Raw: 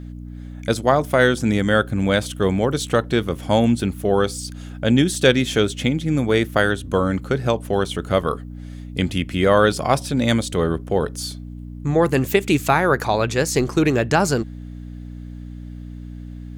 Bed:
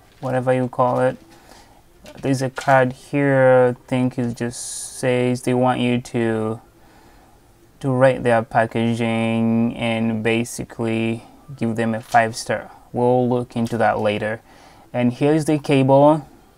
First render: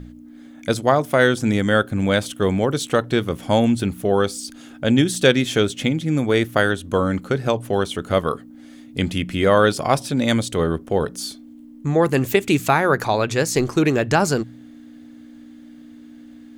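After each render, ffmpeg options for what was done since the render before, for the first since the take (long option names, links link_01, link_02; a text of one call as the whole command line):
ffmpeg -i in.wav -af "bandreject=frequency=60:width_type=h:width=4,bandreject=frequency=120:width_type=h:width=4,bandreject=frequency=180:width_type=h:width=4" out.wav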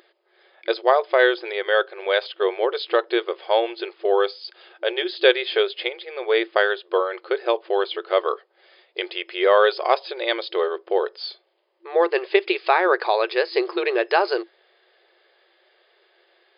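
ffmpeg -i in.wav -af "afftfilt=real='re*between(b*sr/4096,340,5100)':imag='im*between(b*sr/4096,340,5100)':win_size=4096:overlap=0.75,bandreject=frequency=1400:width=17" out.wav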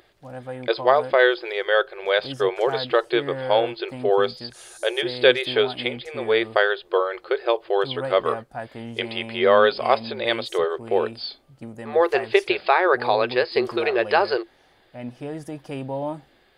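ffmpeg -i in.wav -i bed.wav -filter_complex "[1:a]volume=-16dB[link_01];[0:a][link_01]amix=inputs=2:normalize=0" out.wav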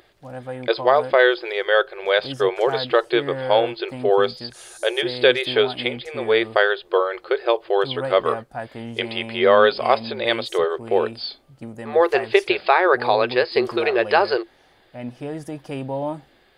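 ffmpeg -i in.wav -af "volume=2dB,alimiter=limit=-3dB:level=0:latency=1" out.wav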